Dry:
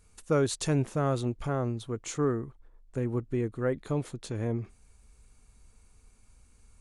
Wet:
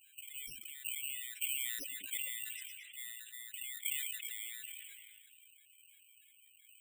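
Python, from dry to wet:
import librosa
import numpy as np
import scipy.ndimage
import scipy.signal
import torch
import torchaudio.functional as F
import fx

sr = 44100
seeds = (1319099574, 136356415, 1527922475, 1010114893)

p1 = fx.highpass(x, sr, hz=48.0, slope=6)
p2 = fx.high_shelf(p1, sr, hz=2700.0, db=6.0)
p3 = fx.over_compress(p2, sr, threshold_db=-38.0, ratio=-1.0)
p4 = fx.wah_lfo(p3, sr, hz=2.9, low_hz=750.0, high_hz=1700.0, q=5.6)
p5 = fx.spec_topn(p4, sr, count=8)
p6 = fx.freq_invert(p5, sr, carrier_hz=3900)
p7 = (np.kron(p6[::8], np.eye(8)[0]) * 8)[:len(p6)]
p8 = p7 + fx.echo_stepped(p7, sr, ms=110, hz=170.0, octaves=0.7, feedback_pct=70, wet_db=-5, dry=0)
p9 = fx.sustainer(p8, sr, db_per_s=26.0)
y = p9 * librosa.db_to_amplitude(5.0)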